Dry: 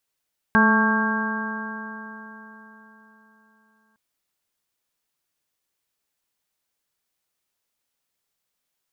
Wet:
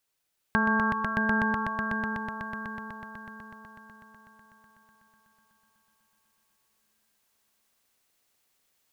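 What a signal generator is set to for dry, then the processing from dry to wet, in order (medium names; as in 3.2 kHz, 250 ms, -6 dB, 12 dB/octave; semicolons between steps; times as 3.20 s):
stretched partials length 3.41 s, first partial 216 Hz, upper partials -10.5/-14/-5.5/-4/-13.5/0 dB, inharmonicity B 0.0024, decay 3.99 s, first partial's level -16.5 dB
compression 3:1, threshold -25 dBFS; echo with a slow build-up 124 ms, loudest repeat 5, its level -3.5 dB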